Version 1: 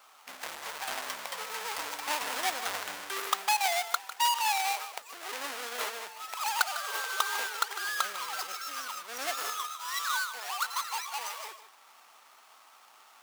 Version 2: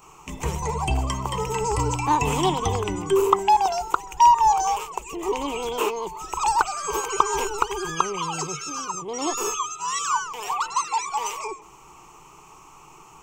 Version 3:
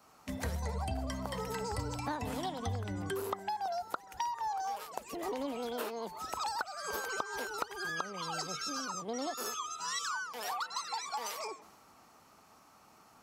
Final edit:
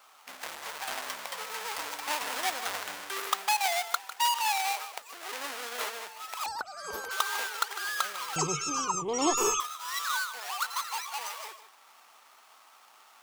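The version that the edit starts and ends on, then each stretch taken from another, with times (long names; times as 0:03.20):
1
0:06.46–0:07.11: punch in from 3
0:08.36–0:09.60: punch in from 2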